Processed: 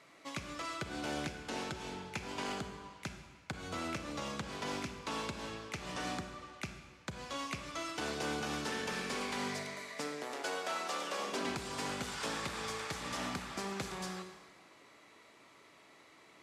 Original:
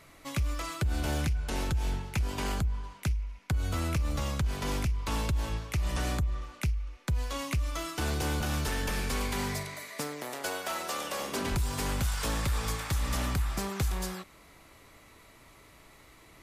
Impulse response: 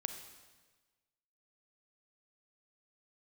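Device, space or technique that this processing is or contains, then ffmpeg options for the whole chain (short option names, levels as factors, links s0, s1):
supermarket ceiling speaker: -filter_complex "[0:a]highpass=230,lowpass=7000[s0];[1:a]atrim=start_sample=2205[s1];[s0][s1]afir=irnorm=-1:irlink=0,volume=0.75"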